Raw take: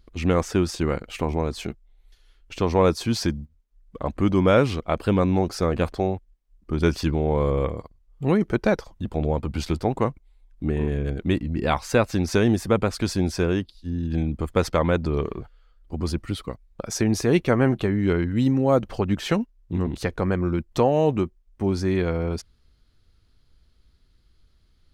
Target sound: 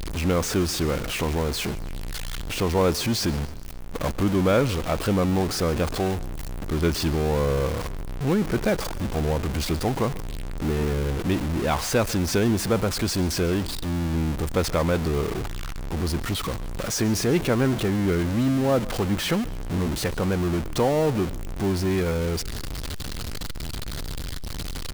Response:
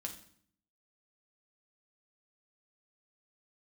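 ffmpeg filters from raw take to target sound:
-filter_complex "[0:a]aeval=exprs='val(0)+0.5*0.1*sgn(val(0))':channel_layout=same,asettb=1/sr,asplit=3[link_01][link_02][link_03];[link_01]atrim=end=3.334[link_04];[link_02]atrim=start=3.33:end=4.23,asetpts=PTS-STARTPTS,afade=type=in:duration=0.004:curve=qsin,afade=type=out:start_time=0.896:duration=0.004:curve=qsin,acrusher=bits=5:dc=4:mix=0:aa=0.000001[link_05];[link_03]atrim=start=4.226[link_06];[link_04][link_05]acrossfade=duration=0.004:curve1=hsin:curve2=qsin[link_07];[link_07][link_06]acrossfade=duration=0.004:curve1=qsin:curve2=hsin,asplit=2[link_08][link_09];[link_09]asplit=4[link_10][link_11][link_12][link_13];[link_10]adelay=138,afreqshift=-31,volume=-20dB[link_14];[link_11]adelay=276,afreqshift=-62,volume=-26.4dB[link_15];[link_12]adelay=414,afreqshift=-93,volume=-32.8dB[link_16];[link_13]adelay=552,afreqshift=-124,volume=-39.1dB[link_17];[link_14][link_15][link_16][link_17]amix=inputs=4:normalize=0[link_18];[link_08][link_18]amix=inputs=2:normalize=0,volume=-4.5dB"

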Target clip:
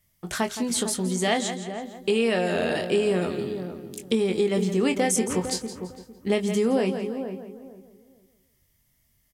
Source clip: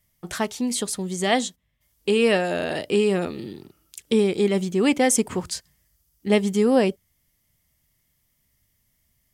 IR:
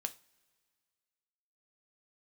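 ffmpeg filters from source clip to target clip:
-filter_complex "[0:a]asplit=2[link_01][link_02];[link_02]adelay=22,volume=-8dB[link_03];[link_01][link_03]amix=inputs=2:normalize=0,asplit=2[link_04][link_05];[link_05]aecho=0:1:168|336|504:0.211|0.0719|0.0244[link_06];[link_04][link_06]amix=inputs=2:normalize=0,acompressor=threshold=-19dB:ratio=6,asplit=2[link_07][link_08];[link_08]adelay=454,lowpass=frequency=810:poles=1,volume=-8dB,asplit=2[link_09][link_10];[link_10]adelay=454,lowpass=frequency=810:poles=1,volume=0.24,asplit=2[link_11][link_12];[link_12]adelay=454,lowpass=frequency=810:poles=1,volume=0.24[link_13];[link_09][link_11][link_13]amix=inputs=3:normalize=0[link_14];[link_07][link_14]amix=inputs=2:normalize=0"

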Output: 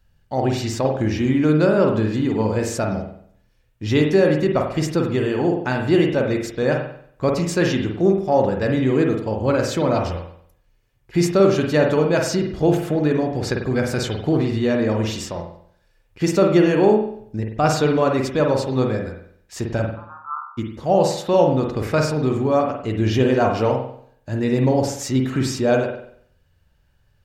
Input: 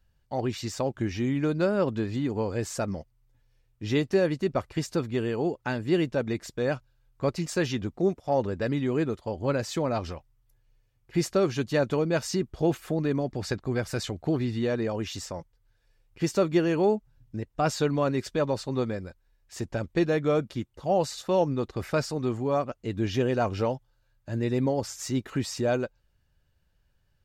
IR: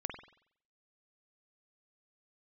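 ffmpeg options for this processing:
-filter_complex "[0:a]asplit=3[link_01][link_02][link_03];[link_01]afade=type=out:start_time=19.93:duration=0.02[link_04];[link_02]asuperpass=centerf=1100:order=12:qfactor=2,afade=type=in:start_time=19.93:duration=0.02,afade=type=out:start_time=20.57:duration=0.02[link_05];[link_03]afade=type=in:start_time=20.57:duration=0.02[link_06];[link_04][link_05][link_06]amix=inputs=3:normalize=0[link_07];[1:a]atrim=start_sample=2205[link_08];[link_07][link_08]afir=irnorm=-1:irlink=0,volume=8dB"

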